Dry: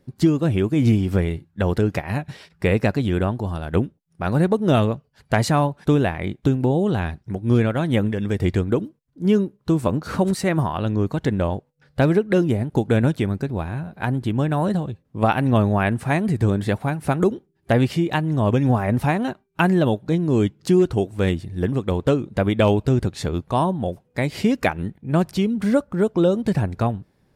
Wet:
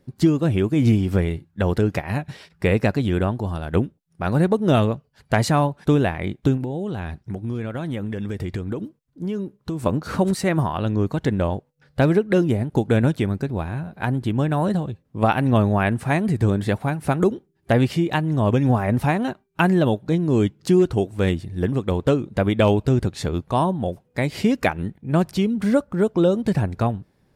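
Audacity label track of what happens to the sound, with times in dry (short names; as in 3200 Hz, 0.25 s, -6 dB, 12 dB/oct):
6.570000	9.860000	compressor 5:1, threshold -23 dBFS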